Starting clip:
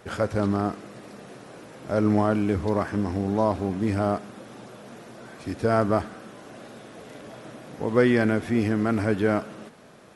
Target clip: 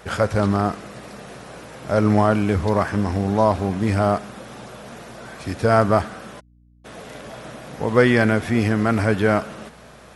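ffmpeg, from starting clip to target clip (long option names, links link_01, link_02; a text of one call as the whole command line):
ffmpeg -i in.wav -filter_complex "[0:a]asplit=3[link_01][link_02][link_03];[link_01]afade=type=out:start_time=6.39:duration=0.02[link_04];[link_02]acrusher=bits=3:mix=0:aa=0.5,afade=type=in:start_time=6.39:duration=0.02,afade=type=out:start_time=6.84:duration=0.02[link_05];[link_03]afade=type=in:start_time=6.84:duration=0.02[link_06];[link_04][link_05][link_06]amix=inputs=3:normalize=0,equalizer=frequency=310:width=1.2:gain=-6.5,aeval=exprs='val(0)+0.001*(sin(2*PI*60*n/s)+sin(2*PI*2*60*n/s)/2+sin(2*PI*3*60*n/s)/3+sin(2*PI*4*60*n/s)/4+sin(2*PI*5*60*n/s)/5)':channel_layout=same,volume=7.5dB" out.wav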